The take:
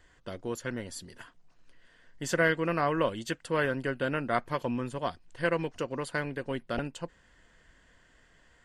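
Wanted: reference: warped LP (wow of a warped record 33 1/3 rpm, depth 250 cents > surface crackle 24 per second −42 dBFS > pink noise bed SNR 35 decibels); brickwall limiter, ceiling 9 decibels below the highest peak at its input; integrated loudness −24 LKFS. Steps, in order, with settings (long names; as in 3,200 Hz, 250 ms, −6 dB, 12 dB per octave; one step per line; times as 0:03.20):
brickwall limiter −21 dBFS
wow of a warped record 33 1/3 rpm, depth 250 cents
surface crackle 24 per second −42 dBFS
pink noise bed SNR 35 dB
level +10.5 dB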